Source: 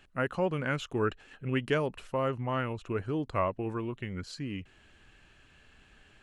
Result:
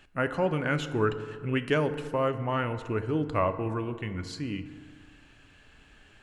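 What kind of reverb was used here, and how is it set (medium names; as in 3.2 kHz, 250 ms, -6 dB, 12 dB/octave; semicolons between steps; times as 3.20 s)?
FDN reverb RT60 1.8 s, low-frequency decay 1×, high-frequency decay 0.45×, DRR 9.5 dB; trim +2.5 dB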